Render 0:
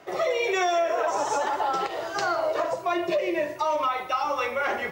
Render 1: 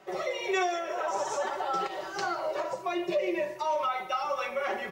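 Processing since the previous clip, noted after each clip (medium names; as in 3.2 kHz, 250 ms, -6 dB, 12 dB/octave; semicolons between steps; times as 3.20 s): comb 5.3 ms, depth 75%; trim -6.5 dB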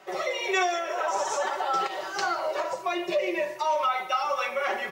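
bass shelf 400 Hz -10 dB; trim +5.5 dB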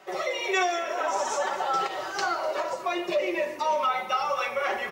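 frequency-shifting echo 248 ms, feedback 65%, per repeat -46 Hz, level -17.5 dB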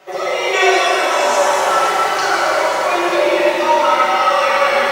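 pitch-shifted reverb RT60 3.1 s, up +7 st, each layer -8 dB, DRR -7.5 dB; trim +4.5 dB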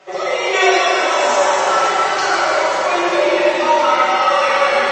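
MP3 32 kbps 24 kHz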